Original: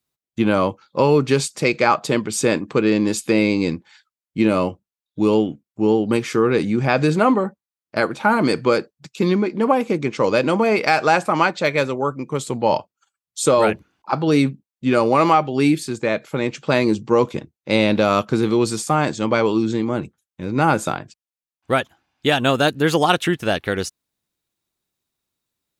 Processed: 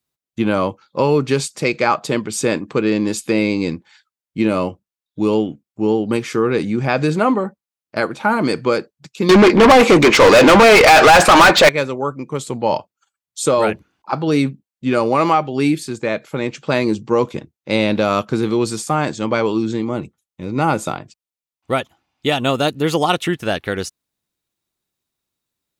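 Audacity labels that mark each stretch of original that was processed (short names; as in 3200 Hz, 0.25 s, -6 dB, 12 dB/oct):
9.290000	11.690000	overdrive pedal drive 34 dB, tone 4400 Hz, clips at -1 dBFS
19.790000	23.290000	notch 1600 Hz, Q 6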